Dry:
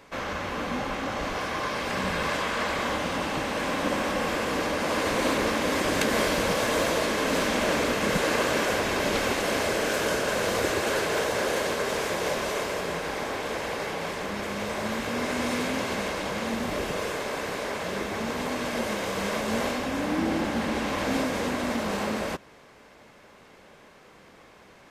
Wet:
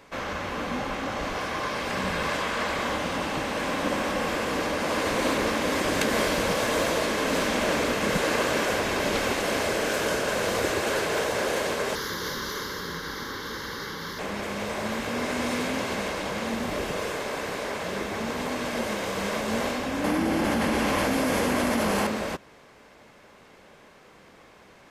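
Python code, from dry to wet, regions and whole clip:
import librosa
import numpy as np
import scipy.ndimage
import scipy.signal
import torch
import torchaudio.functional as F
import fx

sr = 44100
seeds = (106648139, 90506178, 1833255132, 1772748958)

y = fx.chain(x, sr, fx.high_shelf(hz=4800.0, db=8.5),
    fx.fixed_phaser(hz=2500.0, stages=6), at=(11.95, 14.19))
y = fx.chain(y, sr, fx.peak_eq(hz=11000.0, db=10.5, octaves=0.26),
    fx.notch(hz=3800.0, q=15.0),
    fx.env_flatten(amount_pct=100), at=(20.04, 22.07))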